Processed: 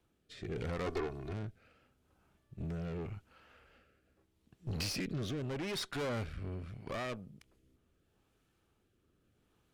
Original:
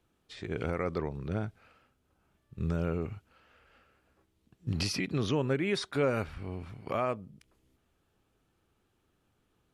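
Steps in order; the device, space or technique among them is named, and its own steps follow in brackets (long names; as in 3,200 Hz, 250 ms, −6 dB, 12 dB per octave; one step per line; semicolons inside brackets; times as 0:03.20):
overdriven rotary cabinet (tube saturation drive 37 dB, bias 0.6; rotating-speaker cabinet horn 0.8 Hz)
0:00.86–0:01.33: comb filter 2.8 ms, depth 89%
level +4 dB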